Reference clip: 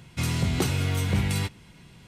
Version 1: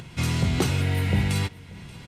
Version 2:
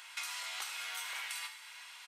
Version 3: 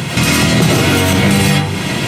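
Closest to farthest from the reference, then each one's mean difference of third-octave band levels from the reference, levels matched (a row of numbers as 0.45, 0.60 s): 1, 3, 2; 2.5, 9.5, 18.5 dB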